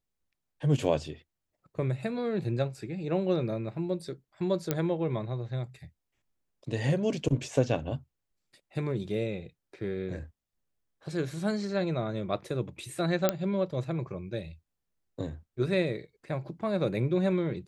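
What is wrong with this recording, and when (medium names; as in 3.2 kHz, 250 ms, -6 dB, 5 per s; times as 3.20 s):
4.71 s: pop -12 dBFS
13.29 s: pop -9 dBFS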